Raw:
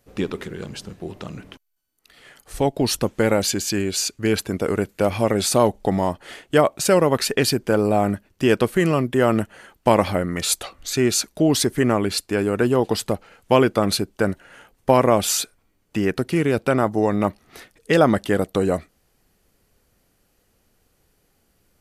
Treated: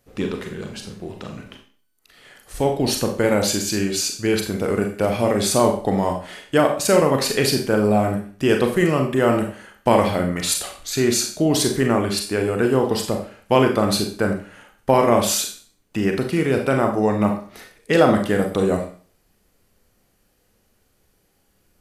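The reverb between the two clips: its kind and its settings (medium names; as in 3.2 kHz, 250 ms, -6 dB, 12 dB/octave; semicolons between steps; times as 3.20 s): Schroeder reverb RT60 0.43 s, combs from 30 ms, DRR 3 dB; trim -1 dB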